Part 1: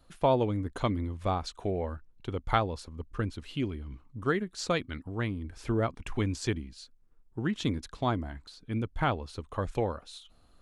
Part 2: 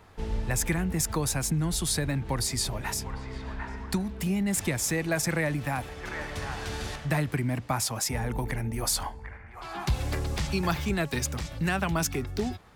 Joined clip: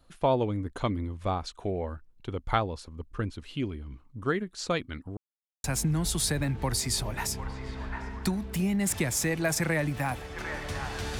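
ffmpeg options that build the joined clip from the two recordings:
ffmpeg -i cue0.wav -i cue1.wav -filter_complex "[0:a]apad=whole_dur=11.19,atrim=end=11.19,asplit=2[link_01][link_02];[link_01]atrim=end=5.17,asetpts=PTS-STARTPTS,afade=type=out:start_time=5.166:duration=0.004:curve=hsin[link_03];[link_02]atrim=start=5.17:end=5.64,asetpts=PTS-STARTPTS,volume=0[link_04];[1:a]atrim=start=1.31:end=6.86,asetpts=PTS-STARTPTS,afade=type=in:duration=0.004:curve=hsin[link_05];[link_03][link_04][link_05]concat=n=3:v=0:a=1" out.wav

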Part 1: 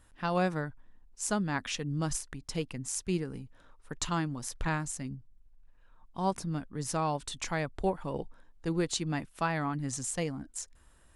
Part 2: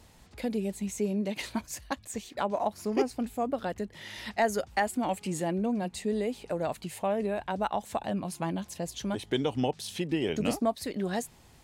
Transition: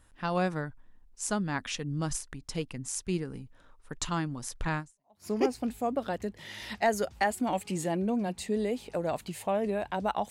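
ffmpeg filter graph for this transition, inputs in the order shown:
ffmpeg -i cue0.wav -i cue1.wav -filter_complex "[0:a]apad=whole_dur=10.3,atrim=end=10.3,atrim=end=5.27,asetpts=PTS-STARTPTS[link_01];[1:a]atrim=start=2.35:end=7.86,asetpts=PTS-STARTPTS[link_02];[link_01][link_02]acrossfade=duration=0.48:curve1=exp:curve2=exp" out.wav

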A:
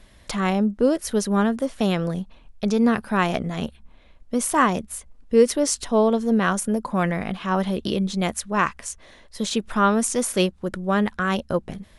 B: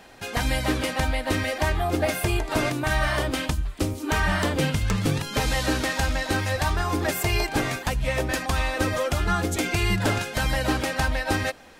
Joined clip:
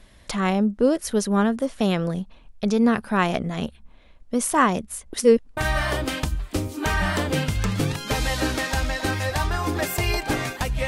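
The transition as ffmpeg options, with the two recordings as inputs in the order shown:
ffmpeg -i cue0.wav -i cue1.wav -filter_complex "[0:a]apad=whole_dur=10.87,atrim=end=10.87,asplit=2[link_01][link_02];[link_01]atrim=end=5.132[link_03];[link_02]atrim=start=5.128:end=5.572,asetpts=PTS-STARTPTS,areverse[link_04];[1:a]atrim=start=2.828:end=8.13[link_05];[link_03][link_04]acrossfade=duration=0.004:curve1=hsin:curve2=hsin[link_06];[link_06][link_05]acrossfade=duration=0.004:curve1=hsin:curve2=hsin" out.wav

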